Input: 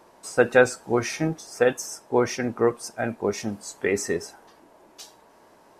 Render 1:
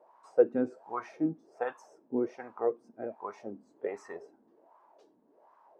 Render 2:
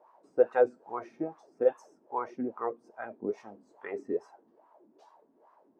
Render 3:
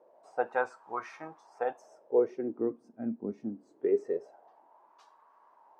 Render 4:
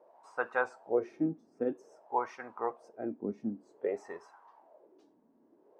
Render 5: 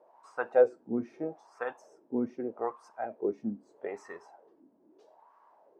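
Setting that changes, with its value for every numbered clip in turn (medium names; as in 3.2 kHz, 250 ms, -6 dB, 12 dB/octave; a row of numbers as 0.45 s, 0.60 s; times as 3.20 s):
wah-wah, rate: 1.3 Hz, 2.4 Hz, 0.24 Hz, 0.52 Hz, 0.79 Hz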